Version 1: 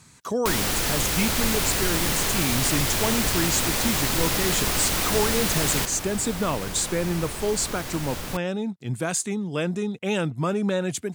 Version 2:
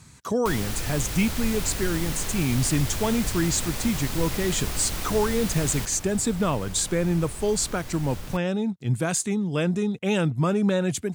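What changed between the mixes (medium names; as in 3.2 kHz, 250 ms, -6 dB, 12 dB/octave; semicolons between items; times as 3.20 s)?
first sound -9.0 dB; second sound -8.5 dB; master: add bass shelf 130 Hz +10 dB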